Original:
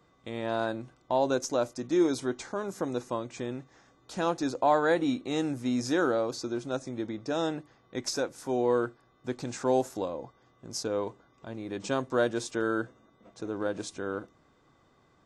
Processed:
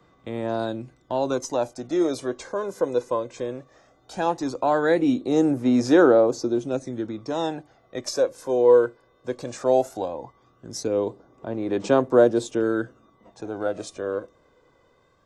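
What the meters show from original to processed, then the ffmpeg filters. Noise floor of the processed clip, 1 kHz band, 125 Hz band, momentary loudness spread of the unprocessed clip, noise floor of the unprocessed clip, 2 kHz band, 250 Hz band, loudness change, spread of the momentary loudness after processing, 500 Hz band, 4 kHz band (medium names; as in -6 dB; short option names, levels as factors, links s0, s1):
-61 dBFS, +4.0 dB, +4.5 dB, 13 LU, -65 dBFS, +3.0 dB, +6.5 dB, +7.5 dB, 17 LU, +8.5 dB, +1.5 dB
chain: -filter_complex "[0:a]aphaser=in_gain=1:out_gain=1:delay=2:decay=0.51:speed=0.17:type=sinusoidal,acrossover=split=310|760|5300[s0][s1][s2][s3];[s1]dynaudnorm=f=670:g=3:m=2.51[s4];[s0][s4][s2][s3]amix=inputs=4:normalize=0"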